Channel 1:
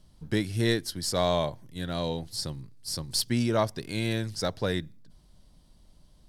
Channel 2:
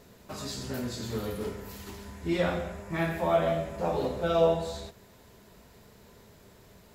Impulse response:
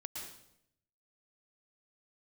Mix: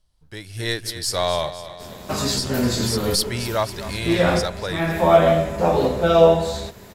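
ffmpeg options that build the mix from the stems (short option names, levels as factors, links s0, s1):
-filter_complex "[0:a]equalizer=f=220:w=0.83:g=-13.5,volume=0.422,asplit=3[s0][s1][s2];[s0]atrim=end=1.51,asetpts=PTS-STARTPTS,afade=t=out:st=1.506:d=0.004:c=hsin[s3];[s1]atrim=start=1.51:end=2.37,asetpts=PTS-STARTPTS,volume=0[s4];[s2]atrim=start=2.37,asetpts=PTS-STARTPTS,afade=t=in:d=0.004:c=hsin[s5];[s3][s4][s5]concat=n=3:v=0:a=1,asplit=3[s6][s7][s8];[s7]volume=0.211[s9];[1:a]adelay=1800,volume=1.06[s10];[s8]apad=whole_len=385574[s11];[s10][s11]sidechaincompress=threshold=0.00708:ratio=10:attack=37:release=412[s12];[s9]aecho=0:1:253|506|759|1012|1265|1518|1771|2024:1|0.56|0.314|0.176|0.0983|0.0551|0.0308|0.0173[s13];[s6][s12][s13]amix=inputs=3:normalize=0,dynaudnorm=f=100:g=11:m=5.01"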